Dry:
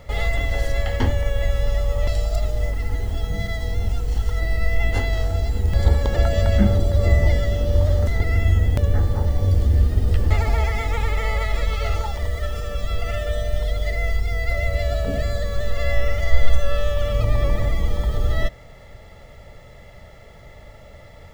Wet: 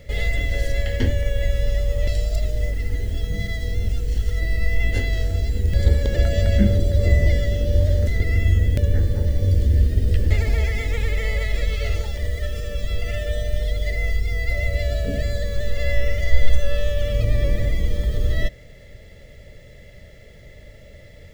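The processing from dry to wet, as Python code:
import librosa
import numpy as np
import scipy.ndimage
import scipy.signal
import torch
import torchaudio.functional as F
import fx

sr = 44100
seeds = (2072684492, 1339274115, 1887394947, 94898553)

y = fx.band_shelf(x, sr, hz=980.0, db=-14.5, octaves=1.1)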